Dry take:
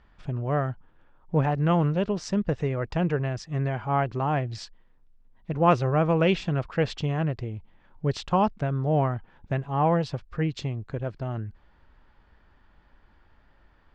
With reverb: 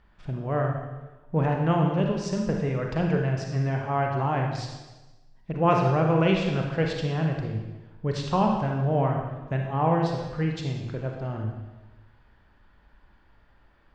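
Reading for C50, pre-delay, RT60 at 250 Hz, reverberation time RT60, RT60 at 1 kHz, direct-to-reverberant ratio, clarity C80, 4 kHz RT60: 2.5 dB, 32 ms, 1.3 s, 1.2 s, 1.1 s, 1.0 dB, 5.5 dB, 1.1 s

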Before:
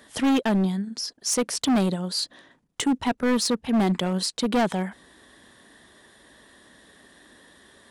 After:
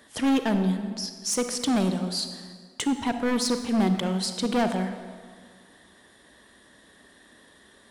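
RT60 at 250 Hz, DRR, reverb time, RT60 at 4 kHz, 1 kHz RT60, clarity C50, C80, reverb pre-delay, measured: 1.9 s, 7.5 dB, 1.8 s, 1.4 s, 1.8 s, 8.5 dB, 9.5 dB, 33 ms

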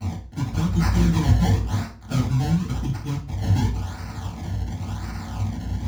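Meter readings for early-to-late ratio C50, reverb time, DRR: 6.5 dB, 0.40 s, -11.5 dB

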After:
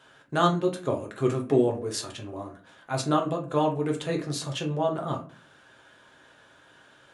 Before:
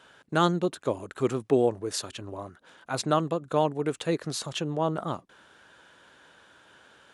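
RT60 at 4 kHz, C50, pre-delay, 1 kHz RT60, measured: 0.25 s, 10.5 dB, 5 ms, 0.35 s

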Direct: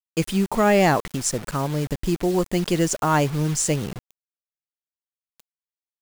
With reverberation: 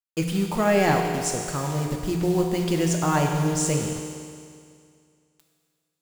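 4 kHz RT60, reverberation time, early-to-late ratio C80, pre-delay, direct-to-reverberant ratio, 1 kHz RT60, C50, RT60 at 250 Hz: 2.2 s, 2.2 s, 4.0 dB, 4 ms, 1.0 dB, 2.2 s, 3.0 dB, 2.2 s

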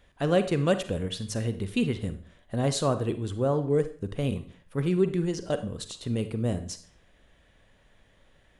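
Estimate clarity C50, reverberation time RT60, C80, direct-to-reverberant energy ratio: 12.0 dB, 0.50 s, 16.5 dB, 10.0 dB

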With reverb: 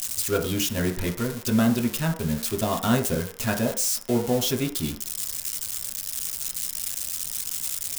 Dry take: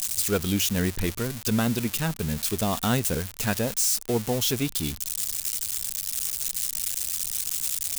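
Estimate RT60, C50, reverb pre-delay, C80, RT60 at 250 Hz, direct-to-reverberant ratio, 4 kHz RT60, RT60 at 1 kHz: 0.50 s, 11.0 dB, 3 ms, 15.0 dB, 0.45 s, 1.0 dB, 0.45 s, 0.50 s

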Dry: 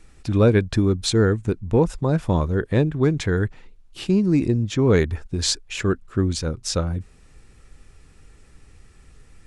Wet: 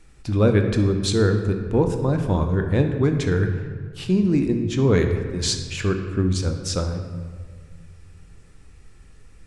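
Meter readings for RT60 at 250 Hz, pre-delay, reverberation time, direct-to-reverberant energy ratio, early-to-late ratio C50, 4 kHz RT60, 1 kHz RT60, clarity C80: 2.2 s, 20 ms, 1.7 s, 5.0 dB, 7.0 dB, 1.1 s, 1.6 s, 8.0 dB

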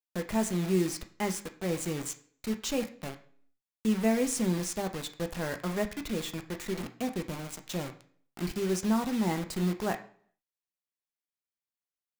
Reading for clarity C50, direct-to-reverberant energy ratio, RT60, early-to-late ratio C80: 12.5 dB, 5.0 dB, 0.55 s, 17.5 dB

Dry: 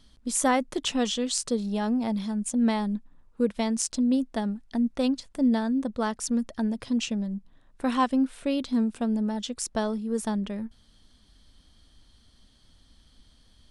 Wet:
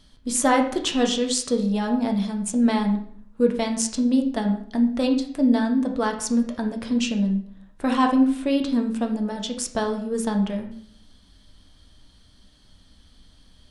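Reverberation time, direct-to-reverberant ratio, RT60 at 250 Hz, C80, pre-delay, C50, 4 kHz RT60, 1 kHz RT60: 0.60 s, 3.0 dB, 0.75 s, 12.0 dB, 7 ms, 8.5 dB, 0.50 s, 0.60 s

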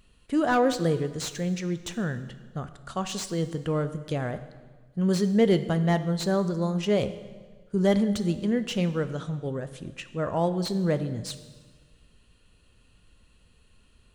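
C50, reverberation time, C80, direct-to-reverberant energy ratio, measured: 13.0 dB, 1.4 s, 14.5 dB, 10.5 dB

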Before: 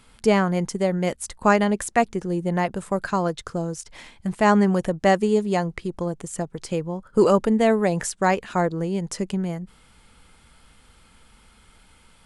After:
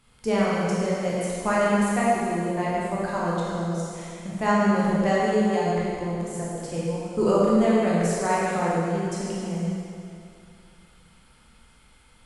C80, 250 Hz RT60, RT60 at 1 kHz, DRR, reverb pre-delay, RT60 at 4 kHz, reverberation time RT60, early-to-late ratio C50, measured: -2.0 dB, 2.6 s, 2.5 s, -7.0 dB, 8 ms, 2.3 s, 2.5 s, -3.5 dB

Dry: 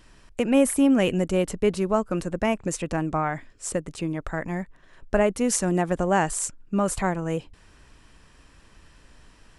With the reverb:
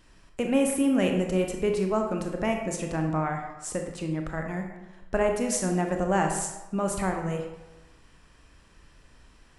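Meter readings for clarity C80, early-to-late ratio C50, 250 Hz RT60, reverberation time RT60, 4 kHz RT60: 7.0 dB, 5.0 dB, 1.0 s, 1.1 s, 0.75 s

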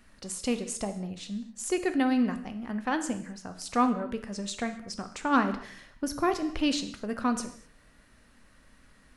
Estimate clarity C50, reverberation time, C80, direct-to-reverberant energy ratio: 11.5 dB, not exponential, 14.0 dB, 8.0 dB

